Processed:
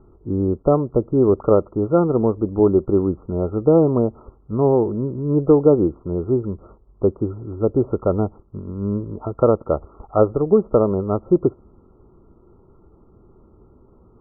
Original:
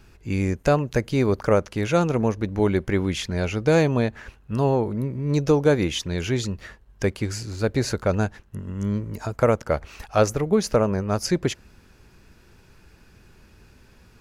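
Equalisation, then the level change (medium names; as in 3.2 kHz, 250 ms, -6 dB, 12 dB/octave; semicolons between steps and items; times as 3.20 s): brick-wall FIR low-pass 1.4 kHz; peaking EQ 360 Hz +8.5 dB 0.91 oct; 0.0 dB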